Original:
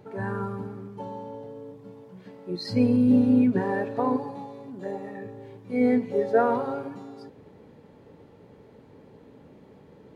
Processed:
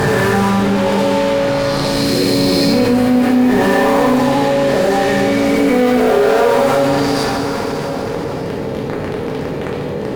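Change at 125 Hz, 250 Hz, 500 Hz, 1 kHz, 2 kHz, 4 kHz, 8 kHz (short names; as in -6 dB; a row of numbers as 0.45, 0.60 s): +14.5 dB, +11.0 dB, +16.0 dB, +16.0 dB, +20.0 dB, +24.5 dB, n/a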